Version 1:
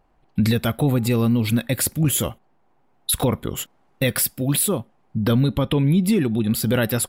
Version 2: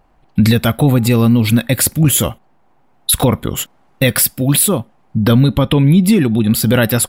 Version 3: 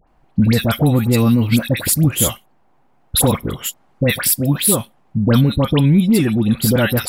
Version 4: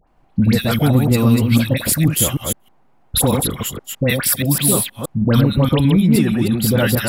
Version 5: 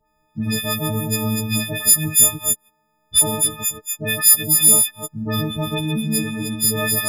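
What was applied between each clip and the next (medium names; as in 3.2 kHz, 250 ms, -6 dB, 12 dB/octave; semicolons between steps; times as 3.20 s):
peaking EQ 400 Hz -3 dB 0.54 oct; trim +8 dB
phase dispersion highs, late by 78 ms, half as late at 1.5 kHz; trim -2.5 dB
chunks repeated in reverse 158 ms, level -4 dB; trim -1.5 dB
partials quantised in pitch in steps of 6 st; trim -9.5 dB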